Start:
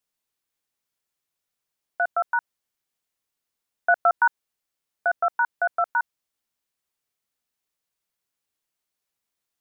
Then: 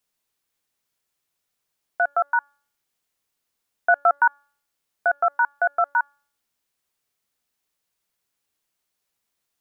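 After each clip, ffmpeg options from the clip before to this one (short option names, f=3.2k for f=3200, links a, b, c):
-filter_complex "[0:a]asplit=2[a][b];[b]alimiter=limit=-21dB:level=0:latency=1:release=105,volume=-3dB[c];[a][c]amix=inputs=2:normalize=0,bandreject=f=285.1:t=h:w=4,bandreject=f=570.2:t=h:w=4,bandreject=f=855.3:t=h:w=4,bandreject=f=1.1404k:t=h:w=4,bandreject=f=1.4255k:t=h:w=4,bandreject=f=1.7106k:t=h:w=4,bandreject=f=1.9957k:t=h:w=4,bandreject=f=2.2808k:t=h:w=4,bandreject=f=2.5659k:t=h:w=4,bandreject=f=2.851k:t=h:w=4,bandreject=f=3.1361k:t=h:w=4,bandreject=f=3.4212k:t=h:w=4,bandreject=f=3.7063k:t=h:w=4,bandreject=f=3.9914k:t=h:w=4,bandreject=f=4.2765k:t=h:w=4,bandreject=f=4.5616k:t=h:w=4,bandreject=f=4.8467k:t=h:w=4,bandreject=f=5.1318k:t=h:w=4,bandreject=f=5.4169k:t=h:w=4,bandreject=f=5.702k:t=h:w=4,bandreject=f=5.9871k:t=h:w=4,bandreject=f=6.2722k:t=h:w=4,bandreject=f=6.5573k:t=h:w=4,bandreject=f=6.8424k:t=h:w=4,bandreject=f=7.1275k:t=h:w=4,bandreject=f=7.4126k:t=h:w=4,bandreject=f=7.6977k:t=h:w=4,bandreject=f=7.9828k:t=h:w=4,bandreject=f=8.2679k:t=h:w=4,bandreject=f=8.553k:t=h:w=4,bandreject=f=8.8381k:t=h:w=4,bandreject=f=9.1232k:t=h:w=4"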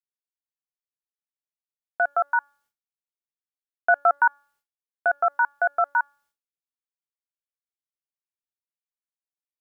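-af "agate=range=-33dB:threshold=-55dB:ratio=3:detection=peak,volume=-1dB"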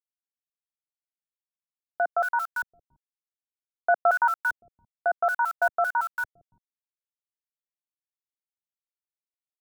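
-filter_complex "[0:a]acrusher=bits=6:mix=0:aa=0.000001,acrossover=split=230|1400[a][b][c];[c]adelay=230[d];[a]adelay=570[e];[e][b][d]amix=inputs=3:normalize=0"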